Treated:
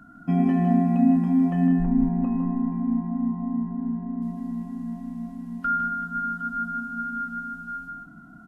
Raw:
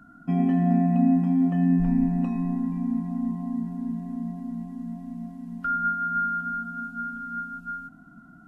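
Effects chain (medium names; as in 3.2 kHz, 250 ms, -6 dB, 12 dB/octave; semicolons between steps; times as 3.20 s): 1.67–4.22 s: low-pass 1.5 kHz 12 dB/octave; loudspeakers at several distances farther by 54 m -6 dB, 65 m -11 dB; trim +2 dB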